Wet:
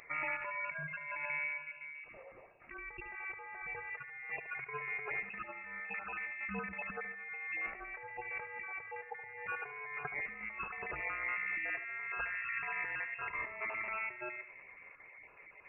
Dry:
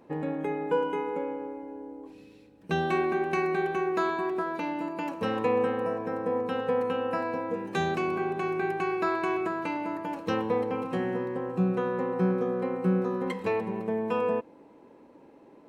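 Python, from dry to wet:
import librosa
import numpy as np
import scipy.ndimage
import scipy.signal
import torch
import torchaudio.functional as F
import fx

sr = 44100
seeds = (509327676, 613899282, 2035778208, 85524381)

p1 = fx.spec_dropout(x, sr, seeds[0], share_pct=22)
p2 = scipy.signal.sosfilt(scipy.signal.butter(4, 1000.0, 'highpass', fs=sr, output='sos'), p1)
p3 = fx.notch(p2, sr, hz=1600.0, q=6.7)
p4 = fx.over_compress(p3, sr, threshold_db=-49.0, ratio=-1.0)
p5 = p4 + fx.echo_feedback(p4, sr, ms=73, feedback_pct=49, wet_db=-12.0, dry=0)
p6 = fx.freq_invert(p5, sr, carrier_hz=3100)
y = F.gain(torch.from_numpy(p6), 5.5).numpy()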